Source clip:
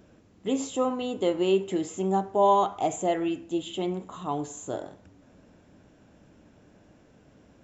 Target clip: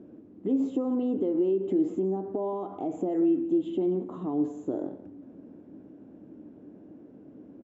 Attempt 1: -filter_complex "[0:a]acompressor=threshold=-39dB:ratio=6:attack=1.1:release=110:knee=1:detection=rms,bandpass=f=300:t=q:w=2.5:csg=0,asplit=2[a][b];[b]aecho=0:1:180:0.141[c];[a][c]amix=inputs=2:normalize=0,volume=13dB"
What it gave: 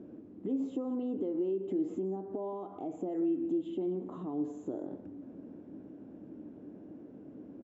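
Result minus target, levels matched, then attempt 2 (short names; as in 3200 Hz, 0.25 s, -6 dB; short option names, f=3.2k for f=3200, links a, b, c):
compressor: peak gain reduction +7 dB
-filter_complex "[0:a]acompressor=threshold=-30.5dB:ratio=6:attack=1.1:release=110:knee=1:detection=rms,bandpass=f=300:t=q:w=2.5:csg=0,asplit=2[a][b];[b]aecho=0:1:180:0.141[c];[a][c]amix=inputs=2:normalize=0,volume=13dB"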